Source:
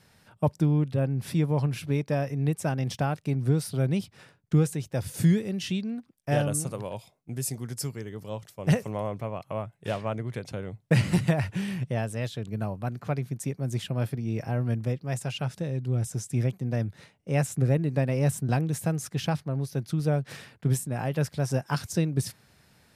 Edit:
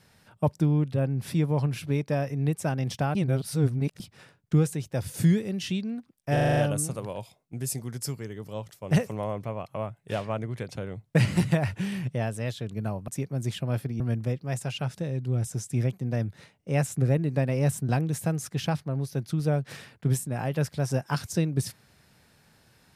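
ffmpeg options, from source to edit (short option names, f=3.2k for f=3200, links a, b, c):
-filter_complex "[0:a]asplit=11[a][b][c][d][e][f][g][h][i][j][k];[a]atrim=end=3.152[l];[b]atrim=start=3.148:end=4.002,asetpts=PTS-STARTPTS,areverse[m];[c]atrim=start=3.998:end=6.372[n];[d]atrim=start=6.328:end=6.372[o];[e]atrim=start=6.328:end=6.372[p];[f]atrim=start=6.328:end=6.372[q];[g]atrim=start=6.328:end=6.372[r];[h]atrim=start=6.328:end=6.372[s];[i]atrim=start=6.328:end=12.842[t];[j]atrim=start=13.358:end=14.282[u];[k]atrim=start=14.598[v];[l][m]acrossfade=d=0.004:c1=hsin:c2=hsin[w];[w][n]acrossfade=d=0.004:c1=hsin:c2=hsin[x];[x][o]acrossfade=d=0.004:c1=hsin:c2=hsin[y];[y][p]acrossfade=d=0.004:c1=hsin:c2=hsin[z];[z][q]acrossfade=d=0.004:c1=hsin:c2=hsin[aa];[aa][r]acrossfade=d=0.004:c1=hsin:c2=hsin[ab];[ab][s]acrossfade=d=0.004:c1=hsin:c2=hsin[ac];[ac][t]acrossfade=d=0.004:c1=hsin:c2=hsin[ad];[ad][u]acrossfade=d=0.004:c1=hsin:c2=hsin[ae];[ae][v]acrossfade=d=0.004:c1=hsin:c2=hsin"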